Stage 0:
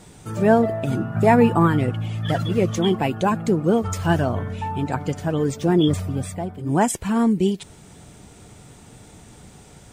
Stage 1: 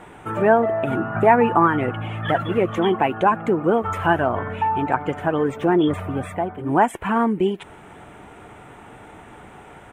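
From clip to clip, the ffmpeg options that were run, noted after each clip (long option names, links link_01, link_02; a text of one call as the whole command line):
ffmpeg -i in.wav -af "firequalizer=gain_entry='entry(160,0);entry(340,9);entry(500,8);entry(830,14);entry(1400,14);entry(3000,6);entry(4600,-14);entry(9600,-4)':delay=0.05:min_phase=1,acompressor=threshold=-19dB:ratio=1.5,volume=-3dB" out.wav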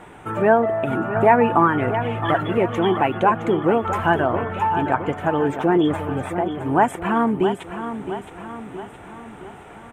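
ffmpeg -i in.wav -af "aecho=1:1:667|1334|2001|2668|3335|4002:0.316|0.164|0.0855|0.0445|0.0231|0.012" out.wav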